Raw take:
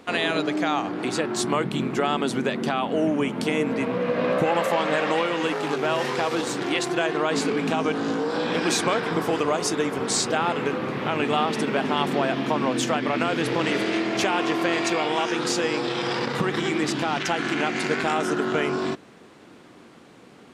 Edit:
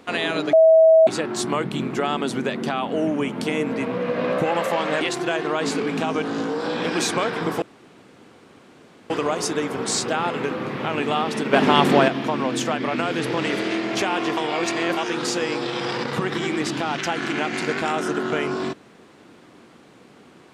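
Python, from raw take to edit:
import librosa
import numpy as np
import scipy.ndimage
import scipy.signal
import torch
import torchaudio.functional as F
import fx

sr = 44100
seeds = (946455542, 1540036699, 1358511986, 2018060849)

y = fx.edit(x, sr, fx.bleep(start_s=0.53, length_s=0.54, hz=645.0, db=-9.0),
    fx.cut(start_s=5.01, length_s=1.7),
    fx.insert_room_tone(at_s=9.32, length_s=1.48),
    fx.clip_gain(start_s=11.75, length_s=0.55, db=7.5),
    fx.reverse_span(start_s=14.59, length_s=0.6), tone=tone)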